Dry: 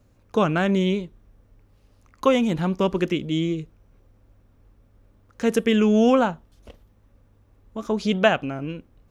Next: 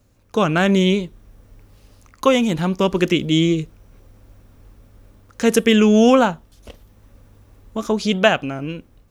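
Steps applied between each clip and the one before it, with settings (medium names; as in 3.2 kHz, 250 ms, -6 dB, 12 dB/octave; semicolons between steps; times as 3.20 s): treble shelf 3.3 kHz +7.5 dB; level rider gain up to 9 dB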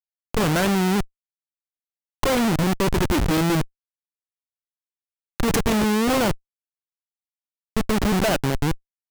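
in parallel at -1.5 dB: peak limiter -9 dBFS, peak gain reduction 7.5 dB; on the sum: Schmitt trigger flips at -16.5 dBFS; trim -3.5 dB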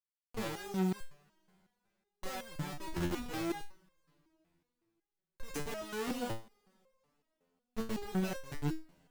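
two-slope reverb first 0.22 s, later 3.3 s, from -18 dB, DRR 18 dB; resonator arpeggio 5.4 Hz 87–530 Hz; trim -6 dB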